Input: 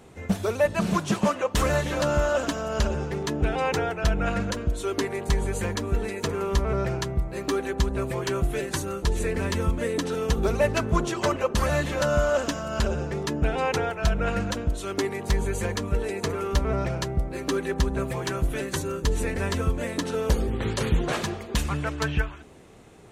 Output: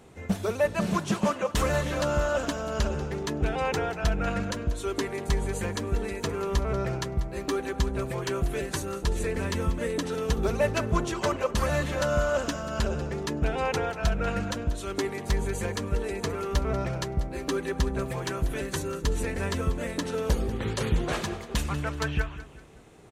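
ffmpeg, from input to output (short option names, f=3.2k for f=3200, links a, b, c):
-af "aecho=1:1:190|380|570:0.168|0.0655|0.0255,volume=-2.5dB"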